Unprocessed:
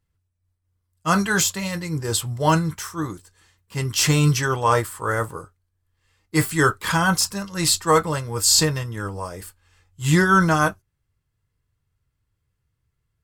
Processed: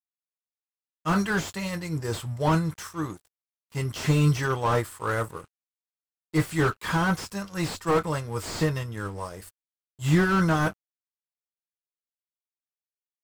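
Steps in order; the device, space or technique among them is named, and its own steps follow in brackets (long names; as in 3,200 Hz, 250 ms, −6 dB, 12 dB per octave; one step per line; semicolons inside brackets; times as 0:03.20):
early transistor amplifier (dead-zone distortion −45 dBFS; slew-rate limiting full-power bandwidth 120 Hz)
level −3 dB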